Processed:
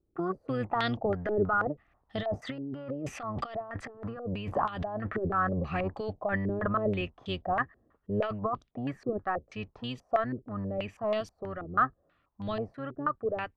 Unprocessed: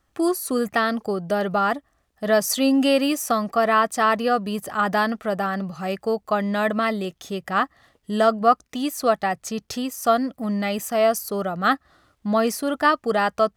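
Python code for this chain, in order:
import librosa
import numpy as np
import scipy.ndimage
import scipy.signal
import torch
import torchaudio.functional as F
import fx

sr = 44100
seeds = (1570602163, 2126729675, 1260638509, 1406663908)

y = fx.octave_divider(x, sr, octaves=1, level_db=-2.0)
y = fx.doppler_pass(y, sr, speed_mps=12, closest_m=11.0, pass_at_s=3.97)
y = fx.over_compress(y, sr, threshold_db=-33.0, ratio=-1.0)
y = fx.filter_held_lowpass(y, sr, hz=6.2, low_hz=380.0, high_hz=3400.0)
y = y * 10.0 ** (-1.5 / 20.0)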